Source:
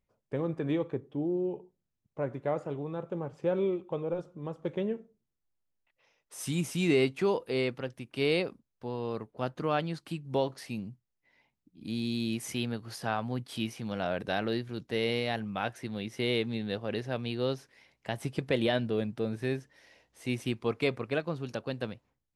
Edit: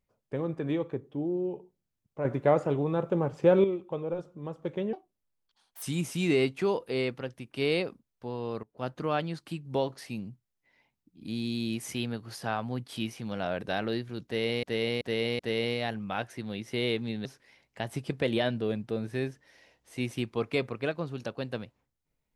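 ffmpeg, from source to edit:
-filter_complex "[0:a]asplit=10[s0][s1][s2][s3][s4][s5][s6][s7][s8][s9];[s0]atrim=end=2.252[s10];[s1]atrim=start=2.248:end=3.642,asetpts=PTS-STARTPTS,volume=2.51[s11];[s2]atrim=start=3.638:end=4.934[s12];[s3]atrim=start=4.93:end=6.42,asetpts=PTS-STARTPTS,asetrate=73647,aresample=44100[s13];[s4]atrim=start=6.416:end=9.23,asetpts=PTS-STARTPTS,afade=t=out:st=2.81:d=0.004:c=hsin:silence=0.0891251[s14];[s5]atrim=start=9.23:end=15.232,asetpts=PTS-STARTPTS,afade=t=in:d=0.25:silence=0.0891251[s15];[s6]atrim=start=14.848:end=15.232[s16];[s7]atrim=start=14.848:end=15.232[s17];[s8]atrim=start=14.848:end=16.712[s18];[s9]atrim=start=17.538[s19];[s10][s11]acrossfade=d=0.004:c1=hsin:c2=hsin[s20];[s20][s12]acrossfade=d=0.004:c1=hsin:c2=hsin[s21];[s21][s13]acrossfade=d=0.004:c1=hsin:c2=hsin[s22];[s14][s15]concat=n=2:v=0:a=1[s23];[s22][s23]acrossfade=d=0.004:c1=hsin:c2=hsin[s24];[s24][s16]acrossfade=d=0.004:c1=hsin:c2=hsin[s25];[s25][s17]acrossfade=d=0.004:c1=hsin:c2=hsin[s26];[s26][s18]acrossfade=d=0.004:c1=hsin:c2=hsin[s27];[s27][s19]acrossfade=d=0.004:c1=hsin:c2=hsin"

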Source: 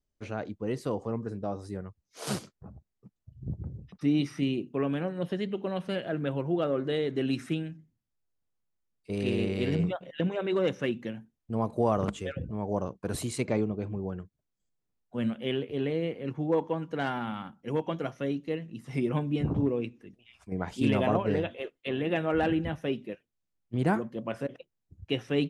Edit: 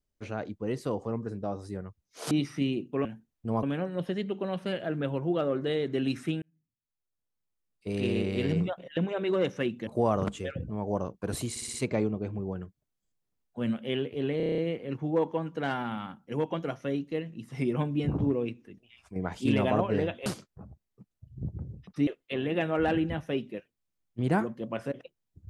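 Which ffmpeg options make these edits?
-filter_complex "[0:a]asplit=19[s0][s1][s2][s3][s4][s5][s6][s7][s8][s9][s10][s11][s12][s13][s14][s15][s16][s17][s18];[s0]atrim=end=2.312[s19];[s1]atrim=start=4.118:end=4.862[s20];[s2]atrim=start=11.098:end=11.682[s21];[s3]atrim=start=4.858:end=7.65,asetpts=PTS-STARTPTS,afade=t=out:st=2.788:d=0.004:c=hsin[s22];[s4]atrim=start=7.65:end=11.102,asetpts=PTS-STARTPTS,afade=t=in:d=1.52[s23];[s5]atrim=start=11.678:end=13.372[s24];[s6]atrim=start=13.308:end=13.372[s25];[s7]atrim=start=13.308:end=13.372[s26];[s8]atrim=start=13.308:end=13.372[s27];[s9]atrim=start=13.308:end=15.972[s28];[s10]atrim=start=15.938:end=15.972[s29];[s11]atrim=start=15.938:end=15.972[s30];[s12]atrim=start=15.938:end=15.972[s31];[s13]atrim=start=15.938:end=15.972[s32];[s14]atrim=start=15.938:end=15.972[s33];[s15]atrim=start=15.938:end=15.972[s34];[s16]atrim=start=15.938:end=21.622[s35];[s17]atrim=start=2.308:end=4.122[s36];[s18]atrim=start=21.618[s37];[s19][s20]acrossfade=d=0.004:c1=hsin:c2=hsin[s38];[s38][s21]acrossfade=d=0.004:c1=hsin:c2=hsin[s39];[s22][s23]concat=n=2:v=0:a=1[s40];[s39][s40]acrossfade=d=0.004:c1=hsin:c2=hsin[s41];[s41][s24]acrossfade=d=0.004:c1=hsin:c2=hsin[s42];[s42][s25]acrossfade=d=0.004:c1=hsin:c2=hsin[s43];[s43][s26]acrossfade=d=0.004:c1=hsin:c2=hsin[s44];[s44][s27]acrossfade=d=0.004:c1=hsin:c2=hsin[s45];[s45][s28]acrossfade=d=0.004:c1=hsin:c2=hsin[s46];[s46][s29]acrossfade=d=0.004:c1=hsin:c2=hsin[s47];[s47][s30]acrossfade=d=0.004:c1=hsin:c2=hsin[s48];[s48][s31]acrossfade=d=0.004:c1=hsin:c2=hsin[s49];[s49][s32]acrossfade=d=0.004:c1=hsin:c2=hsin[s50];[s50][s33]acrossfade=d=0.004:c1=hsin:c2=hsin[s51];[s51][s34]acrossfade=d=0.004:c1=hsin:c2=hsin[s52];[s52][s35]acrossfade=d=0.004:c1=hsin:c2=hsin[s53];[s53][s36]acrossfade=d=0.004:c1=hsin:c2=hsin[s54];[s54][s37]acrossfade=d=0.004:c1=hsin:c2=hsin"

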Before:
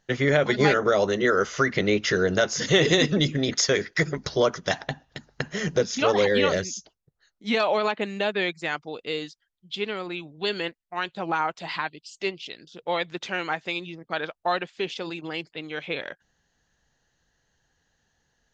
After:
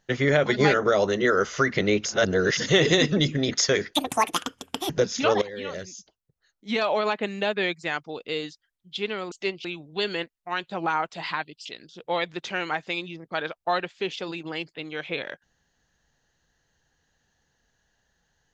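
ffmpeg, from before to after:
-filter_complex "[0:a]asplit=9[s0][s1][s2][s3][s4][s5][s6][s7][s8];[s0]atrim=end=2.052[s9];[s1]atrim=start=2.048:end=2.572,asetpts=PTS-STARTPTS,areverse[s10];[s2]atrim=start=2.568:end=3.944[s11];[s3]atrim=start=3.94:end=5.68,asetpts=PTS-STARTPTS,asetrate=80262,aresample=44100[s12];[s4]atrim=start=5.676:end=6.2,asetpts=PTS-STARTPTS,afade=t=out:st=0.52:d=0.004:c=hsin:silence=0.125893[s13];[s5]atrim=start=6.2:end=10.102,asetpts=PTS-STARTPTS,afade=t=in:d=1.76:silence=0.125893[s14];[s6]atrim=start=12.108:end=12.442[s15];[s7]atrim=start=10.098:end=12.112[s16];[s8]atrim=start=12.438[s17];[s9][s10]acrossfade=d=0.004:c1=hsin:c2=hsin[s18];[s18][s11]acrossfade=d=0.004:c1=hsin:c2=hsin[s19];[s19][s12]acrossfade=d=0.004:c1=hsin:c2=hsin[s20];[s13][s14]concat=n=2:v=0:a=1[s21];[s20][s21]acrossfade=d=0.004:c1=hsin:c2=hsin[s22];[s22][s15]acrossfade=d=0.004:c1=hsin:c2=hsin[s23];[s23][s16]acrossfade=d=0.004:c1=hsin:c2=hsin[s24];[s24][s17]acrossfade=d=0.004:c1=hsin:c2=hsin"

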